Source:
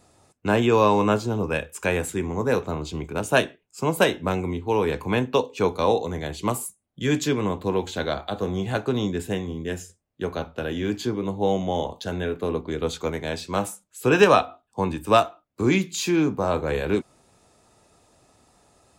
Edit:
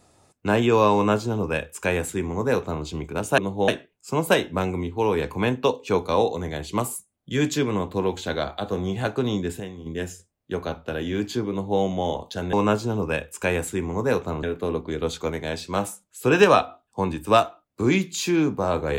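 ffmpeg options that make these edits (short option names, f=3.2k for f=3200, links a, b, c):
-filter_complex "[0:a]asplit=7[a][b][c][d][e][f][g];[a]atrim=end=3.382[h];[b]atrim=start=11.198:end=11.502[i];[c]atrim=start=3.378:end=9.302[j];[d]atrim=start=9.298:end=9.562,asetpts=PTS-STARTPTS,volume=-8dB[k];[e]atrim=start=9.558:end=12.232[l];[f]atrim=start=0.938:end=2.842[m];[g]atrim=start=12.228[n];[h][i]acrossfade=d=0.004:c1=hsin:c2=hsin[o];[o][j]acrossfade=d=0.004:c1=hsin:c2=hsin[p];[p][k]acrossfade=d=0.004:c1=hsin:c2=hsin[q];[q][l]acrossfade=d=0.004:c1=hsin:c2=hsin[r];[r][m]acrossfade=d=0.004:c1=hsin:c2=hsin[s];[s][n]acrossfade=d=0.004:c1=hsin:c2=hsin"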